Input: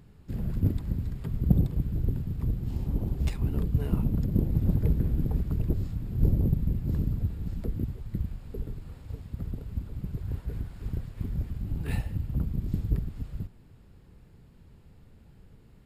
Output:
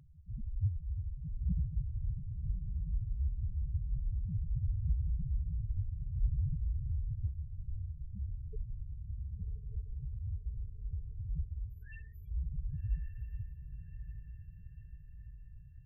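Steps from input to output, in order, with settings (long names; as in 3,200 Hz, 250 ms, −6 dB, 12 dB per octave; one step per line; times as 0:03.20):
0:11.69–0:12.31: Bessel high-pass filter 2,200 Hz
in parallel at +1.5 dB: downward compressor, threshold −37 dBFS, peak gain reduction 21 dB
on the sum: spectral peaks only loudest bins 1
feedback delay with all-pass diffusion 1,151 ms, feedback 58%, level −9.5 dB
0:07.27–0:08.29: string-ensemble chorus
level −2 dB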